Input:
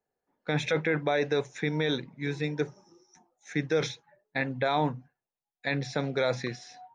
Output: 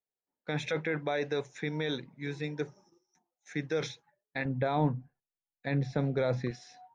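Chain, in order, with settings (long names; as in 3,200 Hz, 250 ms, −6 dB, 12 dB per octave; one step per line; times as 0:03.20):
0:04.45–0:06.51: spectral tilt −3 dB per octave
noise gate −56 dBFS, range −11 dB
level −5 dB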